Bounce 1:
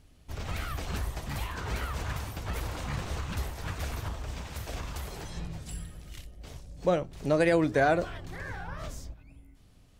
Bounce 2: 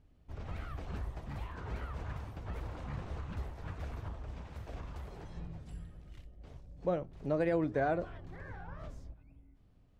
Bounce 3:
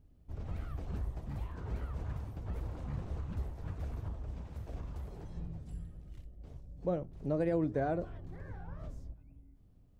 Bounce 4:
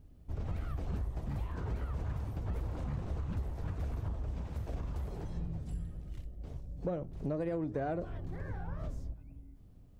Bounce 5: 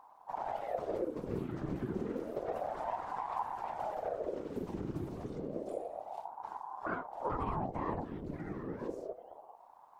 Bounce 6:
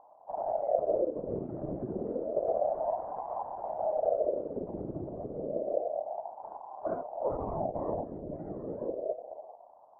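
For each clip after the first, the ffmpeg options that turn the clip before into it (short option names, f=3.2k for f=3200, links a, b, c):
-af "lowpass=f=1.1k:p=1,volume=-6dB"
-af "equalizer=f=2.1k:w=0.32:g=-9.5,volume=2.5dB"
-filter_complex "[0:a]asplit=2[a][b];[b]asoftclip=type=tanh:threshold=-31.5dB,volume=-5.5dB[c];[a][c]amix=inputs=2:normalize=0,acompressor=threshold=-34dB:ratio=6,volume=2dB"
-af "afftfilt=real='hypot(re,im)*cos(2*PI*random(0))':imag='hypot(re,im)*sin(2*PI*random(1))':win_size=512:overlap=0.75,aeval=exprs='val(0)*sin(2*PI*570*n/s+570*0.6/0.3*sin(2*PI*0.3*n/s))':c=same,volume=7.5dB"
-af "lowpass=f=620:t=q:w=4.9,volume=-1.5dB"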